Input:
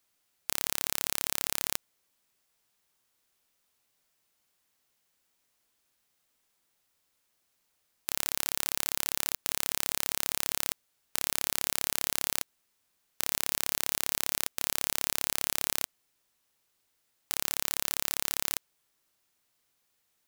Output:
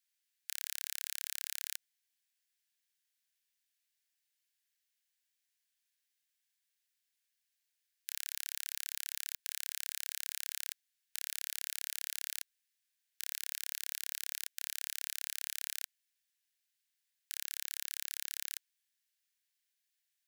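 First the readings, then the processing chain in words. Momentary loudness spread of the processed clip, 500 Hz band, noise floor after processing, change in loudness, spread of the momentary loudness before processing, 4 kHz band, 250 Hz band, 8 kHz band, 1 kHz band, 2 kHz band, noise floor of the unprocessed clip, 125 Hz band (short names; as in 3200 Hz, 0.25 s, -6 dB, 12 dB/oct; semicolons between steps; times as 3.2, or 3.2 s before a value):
5 LU, under -40 dB, -85 dBFS, -9.0 dB, 5 LU, -8.0 dB, under -40 dB, -8.5 dB, under -25 dB, -9.0 dB, -76 dBFS, under -40 dB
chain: elliptic high-pass 1600 Hz, stop band 40 dB; gain -8 dB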